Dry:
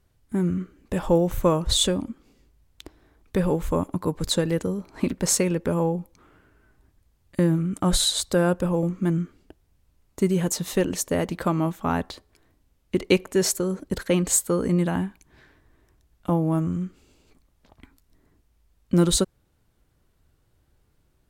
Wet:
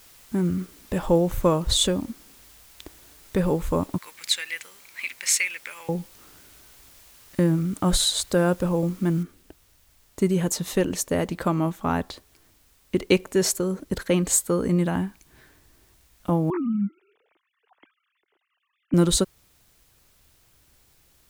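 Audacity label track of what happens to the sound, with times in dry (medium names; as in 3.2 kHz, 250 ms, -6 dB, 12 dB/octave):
3.980000	5.890000	resonant high-pass 2.2 kHz, resonance Q 4.7
9.230000	9.230000	noise floor step -52 dB -62 dB
16.500000	18.940000	formants replaced by sine waves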